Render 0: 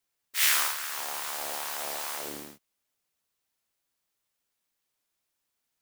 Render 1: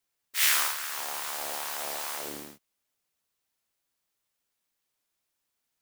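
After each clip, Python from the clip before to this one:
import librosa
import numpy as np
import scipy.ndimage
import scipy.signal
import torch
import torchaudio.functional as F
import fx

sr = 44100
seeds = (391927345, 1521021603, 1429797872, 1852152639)

y = x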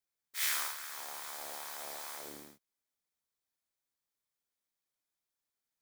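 y = fx.notch(x, sr, hz=2800.0, q=8.2)
y = y * 10.0 ** (-9.0 / 20.0)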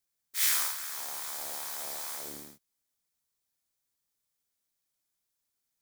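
y = fx.bass_treble(x, sr, bass_db=5, treble_db=6)
y = y * 10.0 ** (1.5 / 20.0)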